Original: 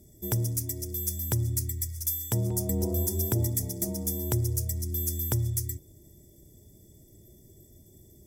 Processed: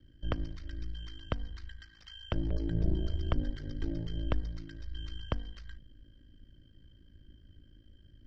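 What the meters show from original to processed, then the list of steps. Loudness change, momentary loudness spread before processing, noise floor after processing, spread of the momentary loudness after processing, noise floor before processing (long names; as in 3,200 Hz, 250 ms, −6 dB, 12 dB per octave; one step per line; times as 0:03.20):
−8.5 dB, 4 LU, −60 dBFS, 16 LU, −56 dBFS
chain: low shelf with overshoot 190 Hz −13 dB, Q 1.5
in parallel at −2.5 dB: brickwall limiter −25 dBFS, peak gain reduction 11.5 dB
on the sum: ring modulation 27 Hz
single-sideband voice off tune −330 Hz 290–3,600 Hz
level +3.5 dB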